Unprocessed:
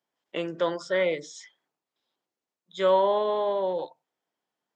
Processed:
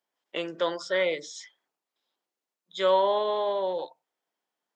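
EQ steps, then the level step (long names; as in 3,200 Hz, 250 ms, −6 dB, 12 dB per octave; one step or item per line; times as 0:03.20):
high-pass filter 330 Hz 6 dB per octave
dynamic equaliser 4,100 Hz, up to +5 dB, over −50 dBFS, Q 1.3
0.0 dB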